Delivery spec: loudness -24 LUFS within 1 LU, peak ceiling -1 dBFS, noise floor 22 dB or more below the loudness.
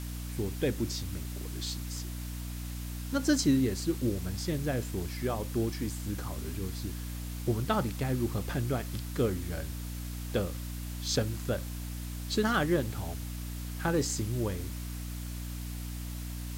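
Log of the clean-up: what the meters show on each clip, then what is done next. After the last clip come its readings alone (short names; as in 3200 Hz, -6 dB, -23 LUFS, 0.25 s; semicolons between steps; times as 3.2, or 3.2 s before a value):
hum 60 Hz; harmonics up to 300 Hz; hum level -36 dBFS; noise floor -38 dBFS; noise floor target -56 dBFS; loudness -33.5 LUFS; peak -14.5 dBFS; loudness target -24.0 LUFS
-> notches 60/120/180/240/300 Hz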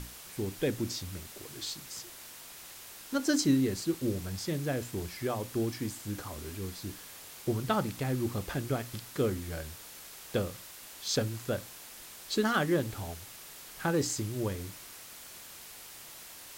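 hum none; noise floor -49 dBFS; noise floor target -56 dBFS
-> noise print and reduce 7 dB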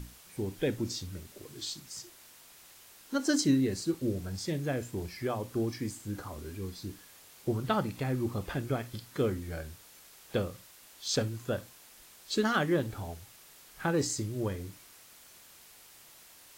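noise floor -56 dBFS; loudness -33.5 LUFS; peak -15.5 dBFS; loudness target -24.0 LUFS
-> gain +9.5 dB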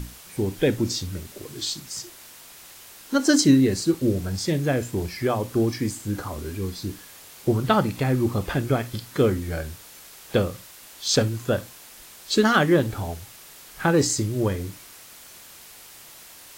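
loudness -24.0 LUFS; peak -6.0 dBFS; noise floor -46 dBFS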